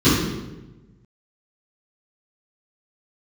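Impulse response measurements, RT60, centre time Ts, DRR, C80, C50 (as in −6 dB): 1.1 s, 78 ms, −16.0 dB, 3.0 dB, 0.0 dB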